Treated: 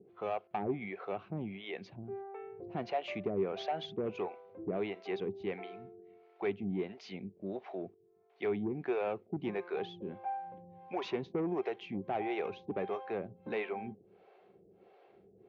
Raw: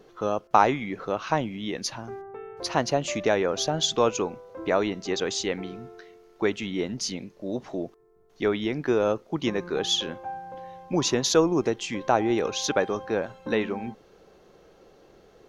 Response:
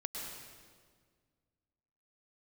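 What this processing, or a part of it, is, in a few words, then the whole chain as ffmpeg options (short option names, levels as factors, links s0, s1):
guitar amplifier with harmonic tremolo: -filter_complex "[0:a]acrossover=split=440[s0][s1];[s0]aeval=exprs='val(0)*(1-1/2+1/2*cos(2*PI*1.5*n/s))':c=same[s2];[s1]aeval=exprs='val(0)*(1-1/2-1/2*cos(2*PI*1.5*n/s))':c=same[s3];[s2][s3]amix=inputs=2:normalize=0,asoftclip=type=tanh:threshold=0.0531,highpass=86,equalizer=f=100:t=q:w=4:g=9,equalizer=f=190:t=q:w=4:g=9,equalizer=f=390:t=q:w=4:g=10,equalizer=f=730:t=q:w=4:g=10,equalizer=f=2300:t=q:w=4:g=8,lowpass=f=3500:w=0.5412,lowpass=f=3500:w=1.3066,volume=0.398"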